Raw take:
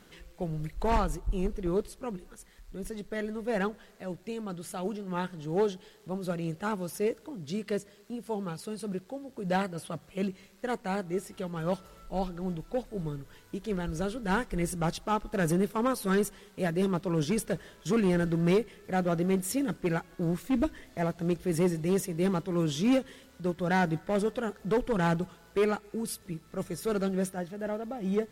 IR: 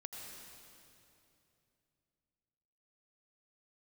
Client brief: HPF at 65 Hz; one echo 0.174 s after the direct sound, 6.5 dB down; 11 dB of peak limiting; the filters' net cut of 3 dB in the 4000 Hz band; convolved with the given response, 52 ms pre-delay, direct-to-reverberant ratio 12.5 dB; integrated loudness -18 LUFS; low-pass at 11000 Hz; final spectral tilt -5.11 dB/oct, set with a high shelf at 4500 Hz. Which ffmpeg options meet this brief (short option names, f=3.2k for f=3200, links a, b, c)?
-filter_complex "[0:a]highpass=65,lowpass=11k,equalizer=f=4k:t=o:g=-9,highshelf=f=4.5k:g=8.5,alimiter=level_in=2.5dB:limit=-24dB:level=0:latency=1,volume=-2.5dB,aecho=1:1:174:0.473,asplit=2[a][b];[1:a]atrim=start_sample=2205,adelay=52[c];[b][c]afir=irnorm=-1:irlink=0,volume=-10dB[d];[a][d]amix=inputs=2:normalize=0,volume=17.5dB"